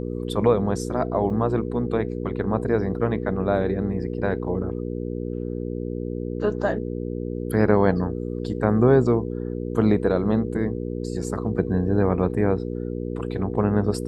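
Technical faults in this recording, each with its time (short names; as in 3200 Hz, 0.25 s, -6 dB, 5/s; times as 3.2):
hum 60 Hz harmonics 8 -29 dBFS
1.3 gap 2.2 ms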